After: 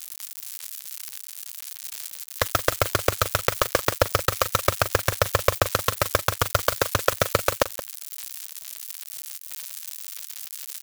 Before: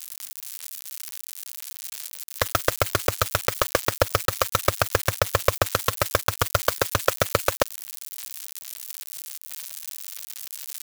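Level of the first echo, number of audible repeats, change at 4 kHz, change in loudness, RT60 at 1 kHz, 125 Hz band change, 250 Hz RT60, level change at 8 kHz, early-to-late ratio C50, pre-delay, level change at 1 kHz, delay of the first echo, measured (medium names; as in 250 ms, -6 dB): -14.0 dB, 1, 0.0 dB, 0.0 dB, no reverb, 0.0 dB, no reverb, 0.0 dB, no reverb, no reverb, 0.0 dB, 174 ms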